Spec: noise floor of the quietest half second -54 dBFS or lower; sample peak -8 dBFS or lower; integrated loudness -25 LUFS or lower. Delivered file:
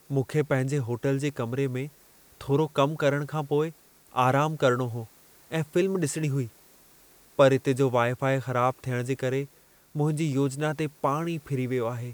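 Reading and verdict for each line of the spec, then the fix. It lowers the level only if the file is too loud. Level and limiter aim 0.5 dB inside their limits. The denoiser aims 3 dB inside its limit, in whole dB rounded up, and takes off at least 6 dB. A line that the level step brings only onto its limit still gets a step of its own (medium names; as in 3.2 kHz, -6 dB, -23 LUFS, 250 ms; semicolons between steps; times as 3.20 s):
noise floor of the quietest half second -56 dBFS: pass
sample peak -7.0 dBFS: fail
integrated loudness -27.0 LUFS: pass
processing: peak limiter -8.5 dBFS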